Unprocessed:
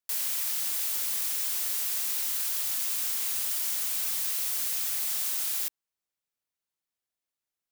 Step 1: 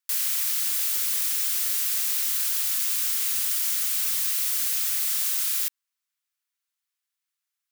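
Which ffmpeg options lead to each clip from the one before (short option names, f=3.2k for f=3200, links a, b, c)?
-af "highpass=f=1.1k:w=0.5412,highpass=f=1.1k:w=1.3066,volume=4.5dB"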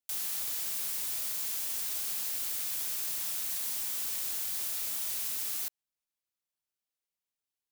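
-filter_complex "[0:a]aeval=exprs='val(0)*sin(2*PI*1200*n/s)':c=same,asplit=2[a][b];[b]volume=30dB,asoftclip=hard,volume=-30dB,volume=-6dB[c];[a][c]amix=inputs=2:normalize=0,volume=-8dB"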